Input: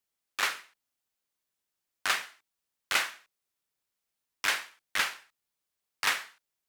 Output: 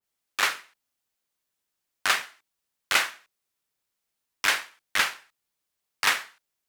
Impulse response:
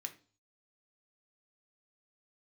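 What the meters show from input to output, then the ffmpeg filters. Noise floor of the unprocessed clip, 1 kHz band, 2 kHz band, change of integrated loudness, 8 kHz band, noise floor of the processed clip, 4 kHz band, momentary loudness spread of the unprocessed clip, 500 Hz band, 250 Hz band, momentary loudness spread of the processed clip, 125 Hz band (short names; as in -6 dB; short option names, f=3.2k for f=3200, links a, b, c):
under -85 dBFS, +5.0 dB, +5.0 dB, +5.0 dB, +4.5 dB, -83 dBFS, +4.5 dB, 14 LU, +5.0 dB, +5.0 dB, 8 LU, n/a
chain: -filter_complex "[0:a]asplit=2[a][b];[b]aeval=exprs='sgn(val(0))*max(abs(val(0))-0.00891,0)':c=same,volume=-10dB[c];[a][c]amix=inputs=2:normalize=0,adynamicequalizer=threshold=0.0126:dfrequency=1800:dqfactor=0.7:tfrequency=1800:tqfactor=0.7:attack=5:release=100:ratio=0.375:range=2:mode=cutabove:tftype=highshelf,volume=3dB"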